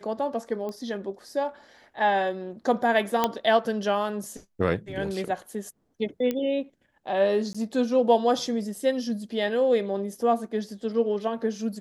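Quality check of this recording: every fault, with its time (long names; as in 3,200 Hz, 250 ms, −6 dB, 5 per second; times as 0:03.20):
0:00.69: click −23 dBFS
0:03.24: click −8 dBFS
0:06.31: click −15 dBFS
0:07.53–0:07.54: drop-out 15 ms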